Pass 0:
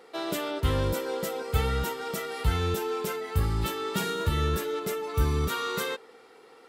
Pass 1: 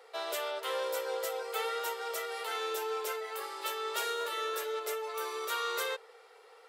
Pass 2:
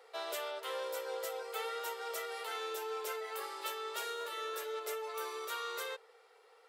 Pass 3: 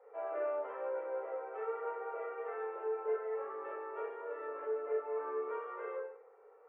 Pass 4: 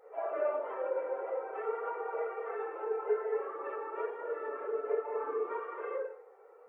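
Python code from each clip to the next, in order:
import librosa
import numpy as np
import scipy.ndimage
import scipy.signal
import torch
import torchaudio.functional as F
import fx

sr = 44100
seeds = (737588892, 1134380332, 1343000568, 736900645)

y1 = scipy.signal.sosfilt(scipy.signal.butter(8, 430.0, 'highpass', fs=sr, output='sos'), x)
y1 = y1 * librosa.db_to_amplitude(-2.5)
y2 = fx.rider(y1, sr, range_db=10, speed_s=0.5)
y2 = y2 * librosa.db_to_amplitude(-4.5)
y3 = scipy.ndimage.gaussian_filter1d(y2, 6.3, mode='constant')
y3 = fx.room_shoebox(y3, sr, seeds[0], volume_m3=120.0, walls='mixed', distance_m=2.0)
y3 = y3 * librosa.db_to_amplitude(-3.5)
y4 = fx.phase_scramble(y3, sr, seeds[1], window_ms=50)
y4 = y4 * librosa.db_to_amplitude(3.5)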